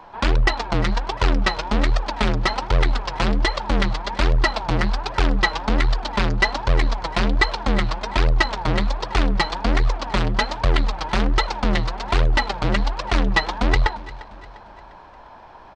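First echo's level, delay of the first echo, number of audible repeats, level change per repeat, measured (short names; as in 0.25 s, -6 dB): -19.0 dB, 0.35 s, 3, -6.5 dB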